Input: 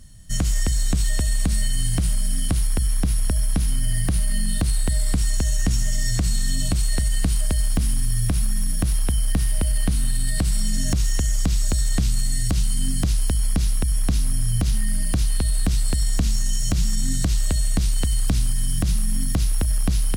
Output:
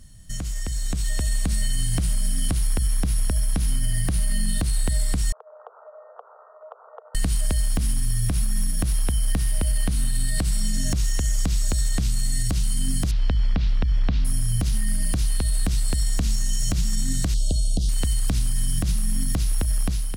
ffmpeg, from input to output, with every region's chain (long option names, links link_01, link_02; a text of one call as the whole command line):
ffmpeg -i in.wav -filter_complex "[0:a]asettb=1/sr,asplit=3[link_01][link_02][link_03];[link_01]atrim=end=5.324[link_04];[link_02]atrim=start=5.32:end=7.15,asetpts=PTS-STARTPTS,afade=type=in:duration=0.004:curve=qsin,afade=type=out:start_time=1.826:duration=0.004:curve=qsin,asuperpass=centerf=780:order=20:qfactor=0.82,acompressor=threshold=-46dB:ratio=2.5:attack=3.2:release=140:knee=1:detection=peak[link_05];[link_03]atrim=start=7.146[link_06];[link_04][link_05]acrossfade=duration=0.004:curve1=hsin:curve2=qsin[link_07];[link_07][link_06]acrossfade=duration=0.004:curve1=qsin:curve2=hsin,asettb=1/sr,asplit=3[link_08][link_09][link_10];[link_08]atrim=end=13.114[link_11];[link_09]atrim=start=13.11:end=14.25,asetpts=PTS-STARTPTS,afade=type=in:duration=0.004:curve=qsin,afade=type=out:start_time=1.136:duration=0.004:curve=qsin,lowpass=frequency=4100:width=0.5412,lowpass=frequency=4100:width=1.3066,equalizer=frequency=350:width=4.3:gain=-4.5[link_12];[link_10]atrim=start=14.246[link_13];[link_11][link_12]acrossfade=duration=0.004:curve1=hsin:curve2=qsin[link_14];[link_14][link_13]acrossfade=duration=0.004:curve1=qsin:curve2=hsin,asettb=1/sr,asplit=3[link_15][link_16][link_17];[link_15]atrim=end=17.344[link_18];[link_16]atrim=start=17.34:end=17.89,asetpts=PTS-STARTPTS,afade=type=in:duration=0.004:curve=qsin,afade=type=out:start_time=0.546:duration=0.004:curve=qsin,acrossover=split=9700[link_19][link_20];[link_20]acompressor=threshold=-54dB:ratio=4:attack=1:release=60[link_21];[link_19][link_21]amix=inputs=2:normalize=0,asuperstop=centerf=1500:order=12:qfactor=0.65,equalizer=frequency=7500:width=7.1:gain=-4.5[link_22];[link_17]atrim=start=17.886[link_23];[link_18][link_22]acrossfade=duration=0.004:curve1=hsin:curve2=qsin[link_24];[link_24][link_23]acrossfade=duration=0.004:curve1=qsin:curve2=hsin,alimiter=limit=-19.5dB:level=0:latency=1:release=373,dynaudnorm=framelen=620:gausssize=3:maxgain=7dB,volume=-1.5dB" out.wav